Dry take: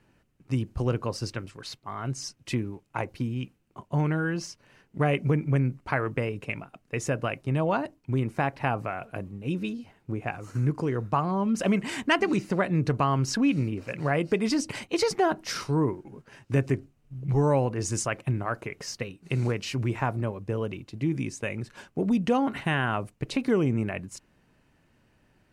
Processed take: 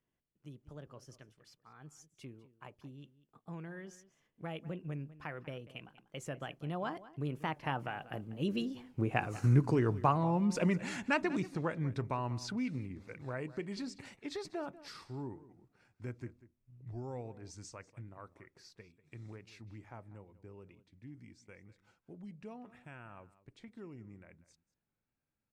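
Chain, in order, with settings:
source passing by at 0:09.35, 39 m/s, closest 27 metres
slap from a distant wall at 33 metres, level −17 dB
wow of a warped record 45 rpm, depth 100 cents

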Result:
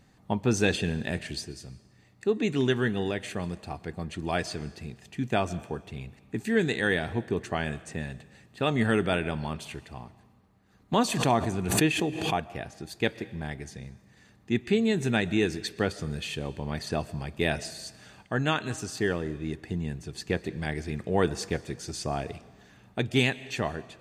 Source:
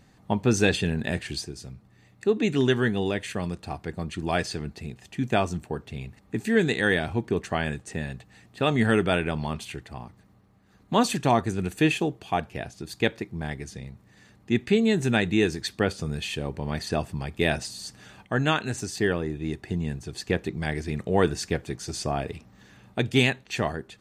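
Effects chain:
on a send at −18 dB: convolution reverb RT60 1.2 s, pre-delay 85 ms
0:10.93–0:12.49: on the sum: background raised ahead of every attack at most 52 dB per second
level −3 dB

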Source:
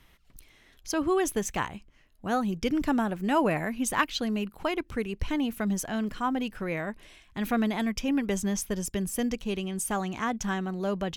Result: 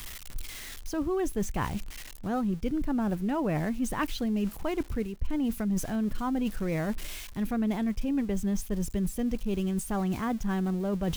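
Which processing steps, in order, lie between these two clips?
spike at every zero crossing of −26.5 dBFS
spectral tilt −3 dB per octave
reversed playback
downward compressor 6 to 1, threshold −29 dBFS, peak gain reduction 17.5 dB
reversed playback
level +2.5 dB

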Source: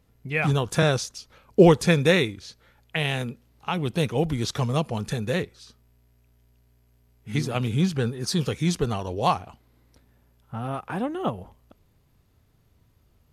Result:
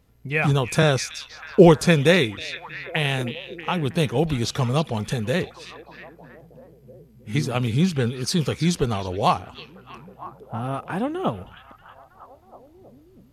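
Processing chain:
echo through a band-pass that steps 319 ms, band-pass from 3,200 Hz, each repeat −0.7 octaves, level −9 dB
level +2.5 dB

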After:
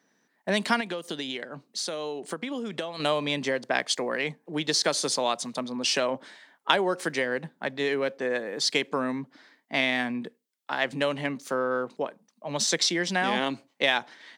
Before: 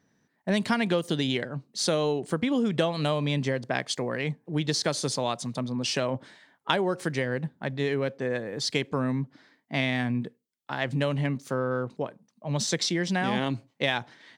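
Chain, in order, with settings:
high-pass filter 170 Hz 24 dB per octave
low-shelf EQ 270 Hz −11 dB
0:00.80–0:03.00: downward compressor, threshold −34 dBFS, peak gain reduction 11 dB
level +4 dB

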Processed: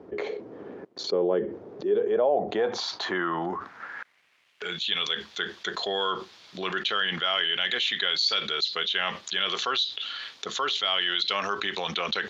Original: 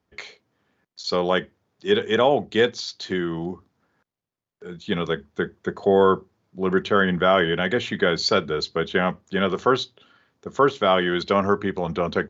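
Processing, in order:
band-pass filter sweep 400 Hz → 3,700 Hz, 0:01.72–0:05.03
envelope flattener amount 70%
level −4.5 dB

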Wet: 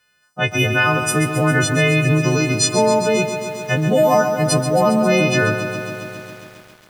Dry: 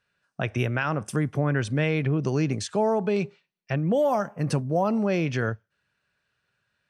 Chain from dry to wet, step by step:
every partial snapped to a pitch grid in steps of 3 semitones
feedback echo at a low word length 135 ms, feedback 80%, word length 8 bits, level −9.5 dB
level +7 dB

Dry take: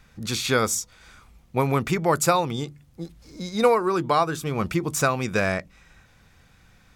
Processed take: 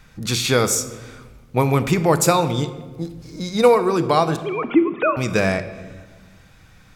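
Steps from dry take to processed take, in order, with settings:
0:04.36–0:05.17: three sine waves on the formant tracks
dynamic equaliser 1,400 Hz, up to −5 dB, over −36 dBFS, Q 1.3
rectangular room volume 1,100 cubic metres, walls mixed, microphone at 0.55 metres
level +5 dB

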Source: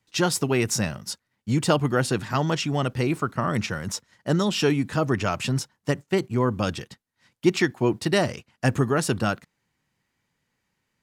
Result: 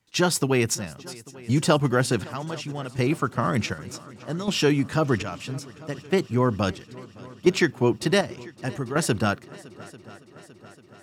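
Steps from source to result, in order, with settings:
square-wave tremolo 0.67 Hz, depth 65%, duty 50%
on a send: echo machine with several playback heads 281 ms, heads second and third, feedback 63%, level −22.5 dB
on the sum: level +1 dB

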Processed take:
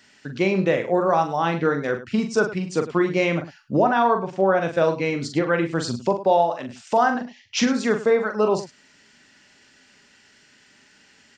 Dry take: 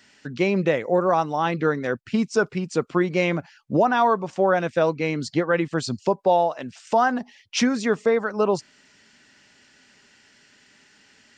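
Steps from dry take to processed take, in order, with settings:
0:03.80–0:04.60: high-shelf EQ 5,900 Hz → 4,300 Hz −11 dB
0:07.15–0:07.64: Butterworth low-pass 7,700 Hz 96 dB per octave
multi-tap delay 42/103 ms −7/−14.5 dB

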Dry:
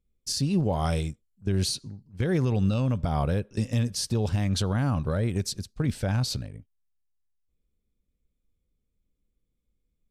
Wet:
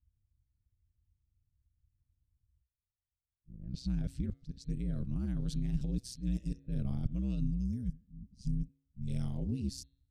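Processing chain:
played backwards from end to start
gain on a spectral selection 0:07.40–0:09.07, 210–4,700 Hz −15 dB
low-pass that shuts in the quiet parts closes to 400 Hz, open at −24.5 dBFS
guitar amp tone stack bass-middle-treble 10-0-1
hum removal 209.6 Hz, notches 20
ring modulation 63 Hz
level +7.5 dB

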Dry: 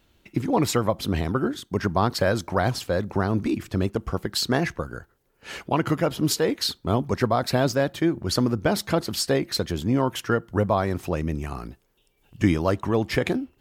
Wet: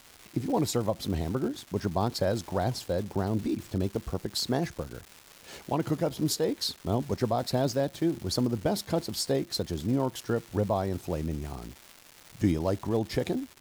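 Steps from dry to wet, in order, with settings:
flat-topped bell 1,800 Hz −8 dB
surface crackle 500 per second −32 dBFS
level −5 dB

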